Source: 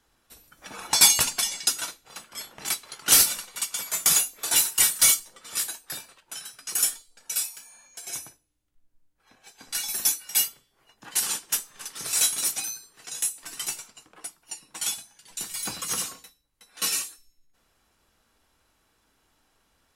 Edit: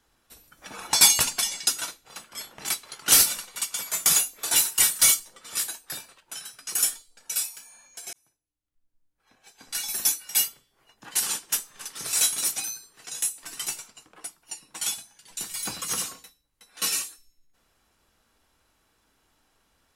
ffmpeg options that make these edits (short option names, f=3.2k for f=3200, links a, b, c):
-filter_complex "[0:a]asplit=2[a][b];[a]atrim=end=8.13,asetpts=PTS-STARTPTS,afade=t=out:st=8.126:d=0.004:c=hsin[c];[b]atrim=start=8.13,asetpts=PTS-STARTPTS,afade=t=in:d=1.84[d];[c][d]concat=n=2:v=0:a=1"